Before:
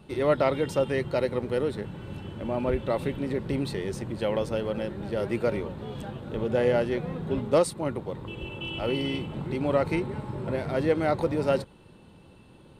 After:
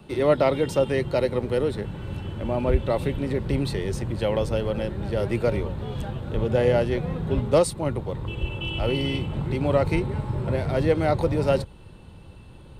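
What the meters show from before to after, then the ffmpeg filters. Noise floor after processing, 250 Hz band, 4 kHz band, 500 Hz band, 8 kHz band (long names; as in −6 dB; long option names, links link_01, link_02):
−46 dBFS, +2.5 dB, +3.5 dB, +3.0 dB, +4.0 dB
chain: -filter_complex "[0:a]asubboost=boost=3.5:cutoff=110,acrossover=split=160|1300|1700[link_01][link_02][link_03][link_04];[link_03]acompressor=threshold=-57dB:ratio=6[link_05];[link_01][link_02][link_05][link_04]amix=inputs=4:normalize=0,volume=4dB"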